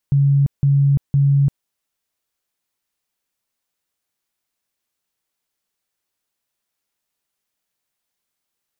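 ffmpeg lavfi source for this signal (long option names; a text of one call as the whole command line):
ffmpeg -f lavfi -i "aevalsrc='0.282*sin(2*PI*140*mod(t,0.51))*lt(mod(t,0.51),48/140)':duration=1.53:sample_rate=44100" out.wav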